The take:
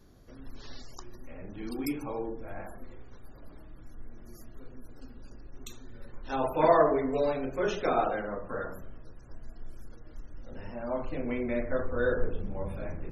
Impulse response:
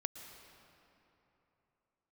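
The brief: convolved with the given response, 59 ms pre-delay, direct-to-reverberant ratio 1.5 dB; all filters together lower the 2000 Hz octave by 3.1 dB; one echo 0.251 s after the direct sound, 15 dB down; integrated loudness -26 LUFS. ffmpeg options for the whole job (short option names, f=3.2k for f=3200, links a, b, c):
-filter_complex "[0:a]equalizer=f=2k:t=o:g=-4.5,aecho=1:1:251:0.178,asplit=2[a][b];[1:a]atrim=start_sample=2205,adelay=59[c];[b][c]afir=irnorm=-1:irlink=0,volume=-0.5dB[d];[a][d]amix=inputs=2:normalize=0,volume=2dB"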